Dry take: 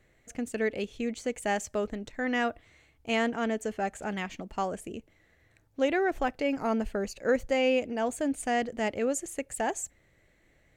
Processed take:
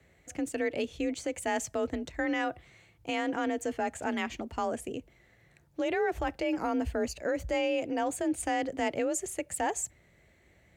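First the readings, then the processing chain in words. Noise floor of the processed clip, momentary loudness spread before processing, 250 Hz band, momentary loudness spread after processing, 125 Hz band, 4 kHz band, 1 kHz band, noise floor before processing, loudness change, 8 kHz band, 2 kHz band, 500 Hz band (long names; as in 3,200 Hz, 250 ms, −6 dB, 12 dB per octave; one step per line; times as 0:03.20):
−64 dBFS, 10 LU, −1.0 dB, 6 LU, −1.5 dB, −2.0 dB, −1.0 dB, −66 dBFS, −1.5 dB, +1.5 dB, −2.0 dB, −2.5 dB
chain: brickwall limiter −24 dBFS, peak gain reduction 9.5 dB
frequency shifter +37 Hz
level +2 dB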